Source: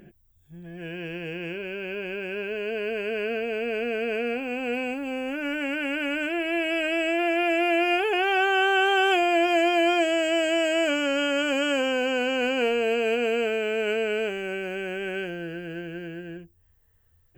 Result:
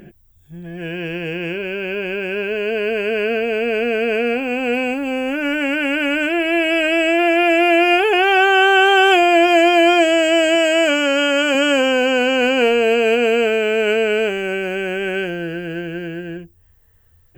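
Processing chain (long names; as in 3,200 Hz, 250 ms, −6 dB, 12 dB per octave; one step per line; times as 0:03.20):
0:10.55–0:11.55: low-shelf EQ 150 Hz −10 dB
level +9 dB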